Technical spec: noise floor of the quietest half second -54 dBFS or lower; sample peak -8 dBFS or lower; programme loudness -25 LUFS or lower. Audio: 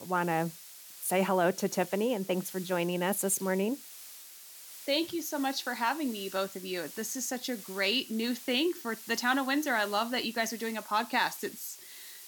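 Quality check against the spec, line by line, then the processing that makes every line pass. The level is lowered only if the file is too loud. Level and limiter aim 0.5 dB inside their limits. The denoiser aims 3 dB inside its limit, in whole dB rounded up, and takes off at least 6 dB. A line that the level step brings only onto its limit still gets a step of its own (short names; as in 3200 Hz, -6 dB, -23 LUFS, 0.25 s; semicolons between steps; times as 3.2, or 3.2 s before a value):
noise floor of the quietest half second -49 dBFS: fail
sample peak -15.5 dBFS: OK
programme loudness -31.0 LUFS: OK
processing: denoiser 8 dB, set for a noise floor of -49 dBFS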